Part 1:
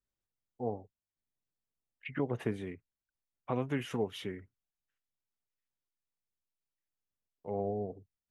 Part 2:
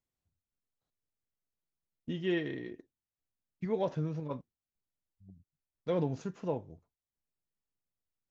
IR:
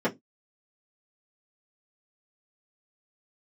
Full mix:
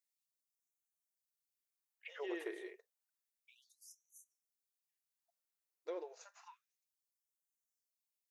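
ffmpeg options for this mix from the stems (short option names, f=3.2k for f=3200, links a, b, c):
-filter_complex "[0:a]volume=-9dB[a];[1:a]equalizer=f=3.2k:t=o:w=0.22:g=-9,acompressor=threshold=-38dB:ratio=2.5,volume=-4dB[b];[a][b]amix=inputs=2:normalize=0,highshelf=f=5.4k:g=8.5,afftfilt=real='re*gte(b*sr/1024,310*pow(5900/310,0.5+0.5*sin(2*PI*0.3*pts/sr)))':imag='im*gte(b*sr/1024,310*pow(5900/310,0.5+0.5*sin(2*PI*0.3*pts/sr)))':win_size=1024:overlap=0.75"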